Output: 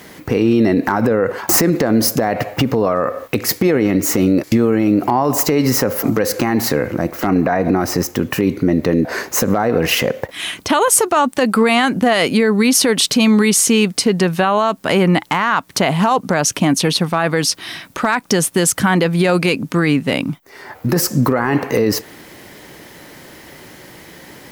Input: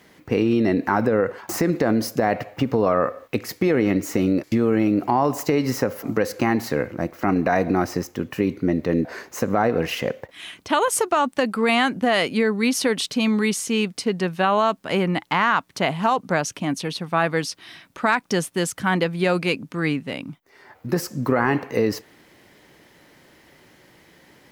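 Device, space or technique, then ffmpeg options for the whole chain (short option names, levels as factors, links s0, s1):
mastering chain: -filter_complex "[0:a]equalizer=f=2700:t=o:w=1.3:g=-1.5,acompressor=threshold=0.0631:ratio=2,asoftclip=type=hard:threshold=0.224,alimiter=level_in=7.94:limit=0.891:release=50:level=0:latency=1,asettb=1/sr,asplit=3[s0][s1][s2];[s0]atrim=end=7.304[s3];[s1]atrim=start=7.3:end=7.8,asetpts=PTS-STARTPTS,afade=t=in:d=0.004:c=qsin,afade=t=out:st=0.496:d=0.004:c=qsin,acrossover=split=2700[s4][s5];[s5]acompressor=threshold=0.00891:ratio=4:attack=1:release=60[s6];[s4][s6]amix=inputs=2:normalize=0[s7];[s2]atrim=start=7.796[s8];[s3][s7]acrossfade=d=0.004:c1=hsin:c2=qsin[s9];[s9][s8]acrossfade=d=0.004:c1=qsin:c2=hsin,highshelf=f=7700:g=6,volume=0.596"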